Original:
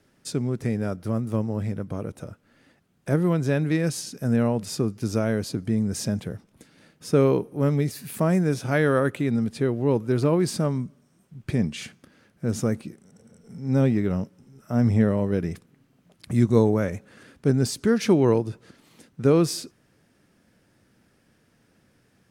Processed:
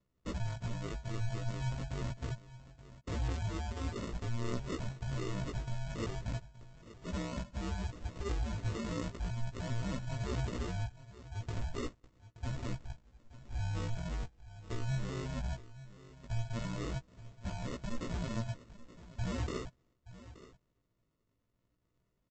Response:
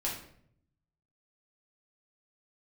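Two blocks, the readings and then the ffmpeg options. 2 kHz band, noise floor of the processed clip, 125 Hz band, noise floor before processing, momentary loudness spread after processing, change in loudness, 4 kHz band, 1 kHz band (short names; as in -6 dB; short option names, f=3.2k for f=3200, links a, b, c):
-12.5 dB, -80 dBFS, -12.0 dB, -64 dBFS, 16 LU, -15.5 dB, -10.0 dB, -11.5 dB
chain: -filter_complex "[0:a]afftfilt=real='real(if(between(b,1,1008),(2*floor((b-1)/48)+1)*48-b,b),0)':imag='imag(if(between(b,1,1008),(2*floor((b-1)/48)+1)*48-b,b),0)*if(between(b,1,1008),-1,1)':win_size=2048:overlap=0.75,lowpass=5.8k,agate=range=-7dB:threshold=-59dB:ratio=16:detection=peak,highpass=f=44:p=1,afftdn=nr=13:nf=-33,highshelf=f=2.7k:g=12,acrossover=split=270[a][b];[b]acompressor=threshold=-29dB:ratio=8[c];[a][c]amix=inputs=2:normalize=0,alimiter=level_in=6dB:limit=-24dB:level=0:latency=1:release=26,volume=-6dB,aresample=16000,acrusher=samples=20:mix=1:aa=0.000001,aresample=44100,flanger=delay=15.5:depth=2.5:speed=0.4,aecho=1:1:875:0.15,volume=4.5dB"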